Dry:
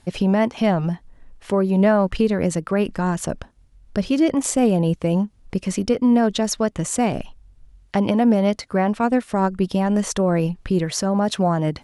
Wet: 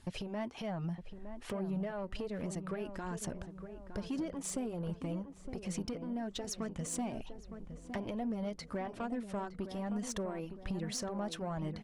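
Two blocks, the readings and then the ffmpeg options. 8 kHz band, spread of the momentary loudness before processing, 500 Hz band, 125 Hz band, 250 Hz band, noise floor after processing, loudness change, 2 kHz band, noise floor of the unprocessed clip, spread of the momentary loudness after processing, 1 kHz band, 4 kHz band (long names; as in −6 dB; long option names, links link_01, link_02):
−14.5 dB, 9 LU, −19.5 dB, −18.0 dB, −19.5 dB, −52 dBFS, −19.5 dB, −18.0 dB, −53 dBFS, 8 LU, −19.5 dB, −15.0 dB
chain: -filter_complex "[0:a]acompressor=threshold=-28dB:ratio=6,asoftclip=type=tanh:threshold=-24dB,flanger=delay=0.6:depth=2.9:regen=-44:speed=1.2:shape=triangular,asplit=2[link_01][link_02];[link_02]adelay=912,lowpass=frequency=1300:poles=1,volume=-9dB,asplit=2[link_03][link_04];[link_04]adelay=912,lowpass=frequency=1300:poles=1,volume=0.52,asplit=2[link_05][link_06];[link_06]adelay=912,lowpass=frequency=1300:poles=1,volume=0.52,asplit=2[link_07][link_08];[link_08]adelay=912,lowpass=frequency=1300:poles=1,volume=0.52,asplit=2[link_09][link_10];[link_10]adelay=912,lowpass=frequency=1300:poles=1,volume=0.52,asplit=2[link_11][link_12];[link_12]adelay=912,lowpass=frequency=1300:poles=1,volume=0.52[link_13];[link_01][link_03][link_05][link_07][link_09][link_11][link_13]amix=inputs=7:normalize=0,volume=-2dB"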